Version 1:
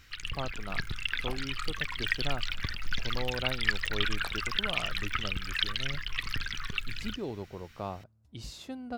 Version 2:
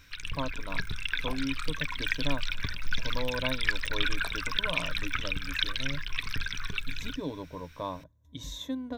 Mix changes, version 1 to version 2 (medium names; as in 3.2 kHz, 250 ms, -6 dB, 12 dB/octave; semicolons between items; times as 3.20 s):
speech: add rippled EQ curve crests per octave 1.1, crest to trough 14 dB; master: add rippled EQ curve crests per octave 1.6, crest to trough 7 dB